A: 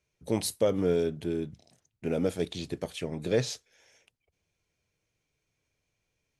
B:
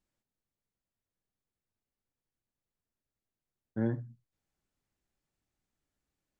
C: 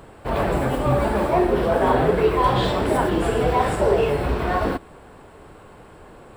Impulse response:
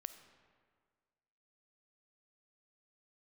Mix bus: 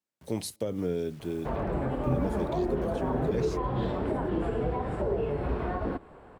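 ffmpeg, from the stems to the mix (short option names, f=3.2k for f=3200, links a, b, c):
-filter_complex "[0:a]acrusher=bits=8:mix=0:aa=0.000001,volume=-2.5dB,asplit=2[a][b];[b]volume=-23.5dB[c];[1:a]highpass=210,volume=-4.5dB[d];[2:a]lowpass=f=1.2k:p=1,lowshelf=f=320:g=-4.5,adelay=1200,volume=-3dB[e];[3:a]atrim=start_sample=2205[f];[c][f]afir=irnorm=-1:irlink=0[g];[a][d][e][g]amix=inputs=4:normalize=0,acrossover=split=350[h][i];[i]acompressor=threshold=-33dB:ratio=6[j];[h][j]amix=inputs=2:normalize=0"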